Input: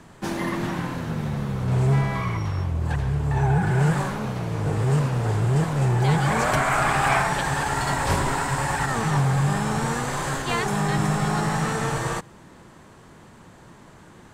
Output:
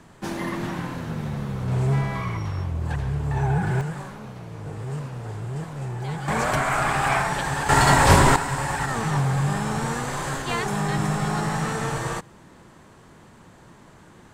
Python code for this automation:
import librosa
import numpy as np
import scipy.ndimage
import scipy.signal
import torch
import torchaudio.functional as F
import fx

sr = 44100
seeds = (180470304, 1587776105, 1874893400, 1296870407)

y = fx.gain(x, sr, db=fx.steps((0.0, -2.0), (3.81, -10.0), (6.28, -1.5), (7.69, 8.0), (8.36, -1.5)))